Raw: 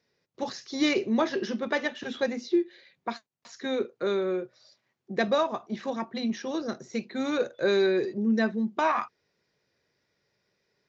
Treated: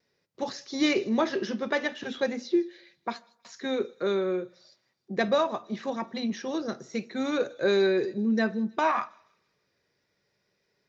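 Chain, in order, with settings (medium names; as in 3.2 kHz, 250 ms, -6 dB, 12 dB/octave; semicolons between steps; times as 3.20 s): vibrato 0.4 Hz 7.3 cents; feedback echo behind a high-pass 159 ms, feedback 45%, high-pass 3.6 kHz, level -19 dB; on a send at -17 dB: reverberation RT60 0.65 s, pre-delay 5 ms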